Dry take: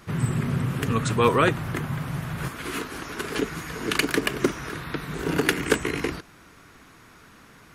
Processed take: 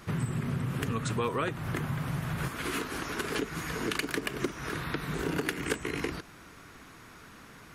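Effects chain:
downward compressor 4 to 1, threshold −29 dBFS, peak gain reduction 13 dB

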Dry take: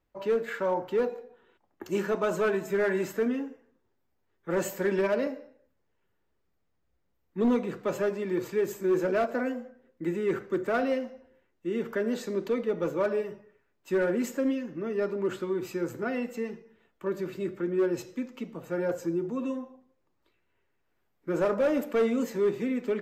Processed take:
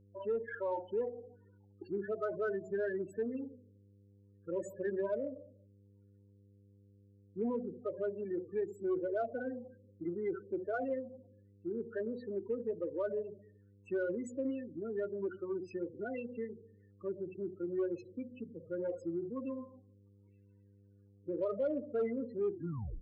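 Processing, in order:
turntable brake at the end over 0.50 s
low-shelf EQ 200 Hz −8 dB
hum removal 61.65 Hz, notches 4
in parallel at 0 dB: downward compressor, threshold −36 dBFS, peak gain reduction 13 dB
on the sum: spectral peaks only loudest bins 8
hum with harmonics 100 Hz, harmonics 5, −54 dBFS −7 dB per octave
harmonic generator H 6 −36 dB, 8 −36 dB, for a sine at −15.5 dBFS
level −9 dB

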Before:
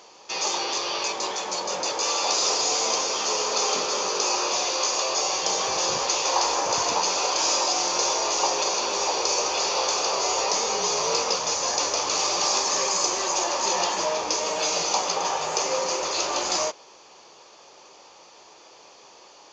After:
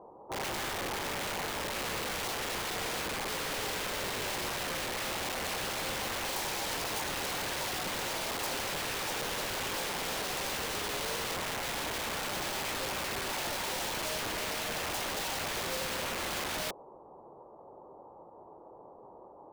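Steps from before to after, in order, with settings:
Butterworth low-pass 990 Hz 36 dB per octave
low-shelf EQ 250 Hz +8.5 dB
in parallel at −4.5 dB: bit reduction 5 bits
on the sum: wrap-around overflow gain 26.5 dB

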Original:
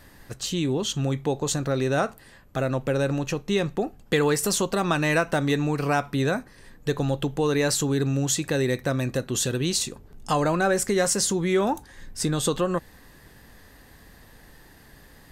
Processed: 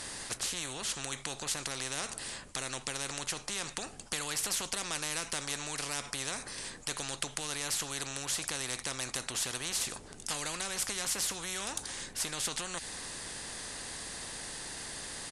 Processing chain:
first-order pre-emphasis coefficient 0.8
downsampling to 22,050 Hz
every bin compressed towards the loudest bin 4 to 1

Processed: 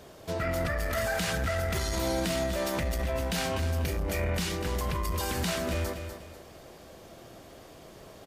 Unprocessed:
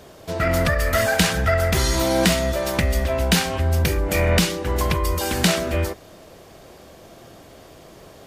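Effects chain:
brickwall limiter −16 dBFS, peak gain reduction 11 dB
on a send: repeating echo 246 ms, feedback 33%, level −9 dB
on the sum: saturating transformer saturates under 120 Hz
level −5 dB

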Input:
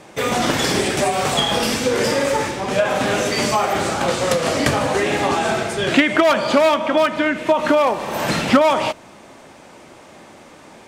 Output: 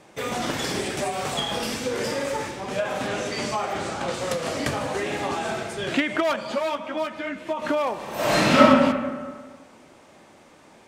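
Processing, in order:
0:03.07–0:04.14: parametric band 14,000 Hz −12 dB 0.59 octaves
0:06.36–0:07.62: string-ensemble chorus
0:08.14–0:08.60: thrown reverb, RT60 1.6 s, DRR −10 dB
level −8.5 dB

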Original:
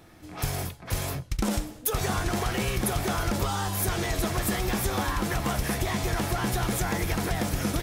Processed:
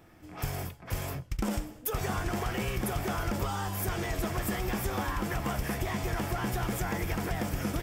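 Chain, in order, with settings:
thirty-one-band graphic EQ 4,000 Hz −9 dB, 6,300 Hz −4 dB, 10,000 Hz −7 dB
level −4 dB

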